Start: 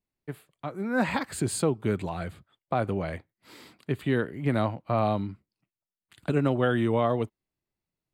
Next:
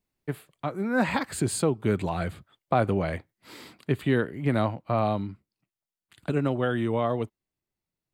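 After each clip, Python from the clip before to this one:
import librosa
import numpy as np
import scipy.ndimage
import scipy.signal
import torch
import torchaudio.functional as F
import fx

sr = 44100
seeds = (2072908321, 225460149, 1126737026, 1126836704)

y = fx.rider(x, sr, range_db=4, speed_s=0.5)
y = y * librosa.db_to_amplitude(1.5)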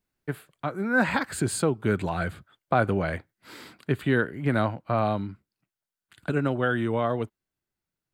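y = fx.peak_eq(x, sr, hz=1500.0, db=7.5, octaves=0.35)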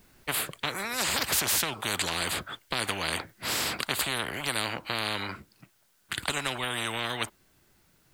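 y = fx.spectral_comp(x, sr, ratio=10.0)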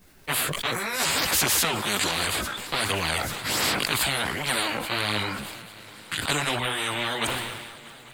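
y = fx.chorus_voices(x, sr, voices=2, hz=0.68, base_ms=16, depth_ms=4.1, mix_pct=60)
y = fx.echo_swing(y, sr, ms=841, ratio=3, feedback_pct=67, wet_db=-21.5)
y = fx.sustainer(y, sr, db_per_s=37.0)
y = y * librosa.db_to_amplitude(6.5)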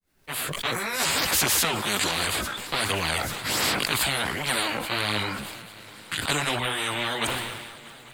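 y = fx.fade_in_head(x, sr, length_s=0.67)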